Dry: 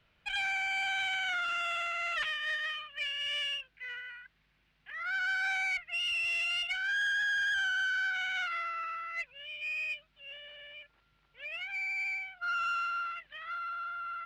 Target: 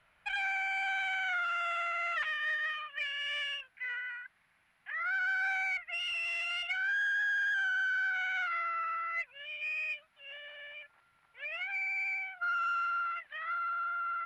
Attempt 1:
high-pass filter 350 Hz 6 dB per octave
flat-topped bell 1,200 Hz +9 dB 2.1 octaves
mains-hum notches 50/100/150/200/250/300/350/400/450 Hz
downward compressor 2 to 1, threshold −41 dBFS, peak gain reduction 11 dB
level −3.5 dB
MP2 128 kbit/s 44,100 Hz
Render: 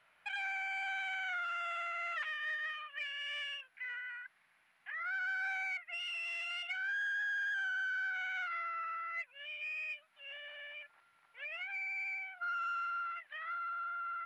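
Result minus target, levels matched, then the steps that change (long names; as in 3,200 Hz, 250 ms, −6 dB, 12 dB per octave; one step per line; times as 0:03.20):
downward compressor: peak gain reduction +5 dB; 250 Hz band −3.5 dB
change: downward compressor 2 to 1, threshold −31 dBFS, peak gain reduction 6 dB
remove: high-pass filter 350 Hz 6 dB per octave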